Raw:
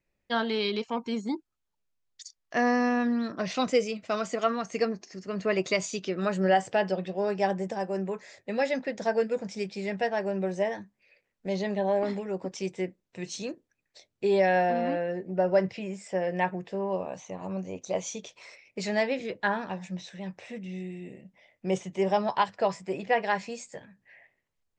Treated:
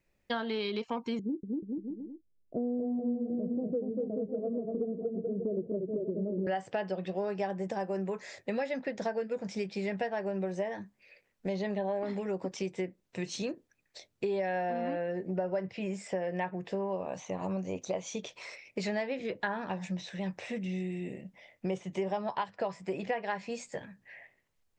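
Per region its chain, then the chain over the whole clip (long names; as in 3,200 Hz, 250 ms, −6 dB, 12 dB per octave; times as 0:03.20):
0:01.19–0:06.47: Butterworth low-pass 520 Hz + bouncing-ball delay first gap 240 ms, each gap 0.8×, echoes 5
whole clip: dynamic equaliser 7,100 Hz, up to −7 dB, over −53 dBFS, Q 0.81; downward compressor 5 to 1, threshold −35 dBFS; level +4 dB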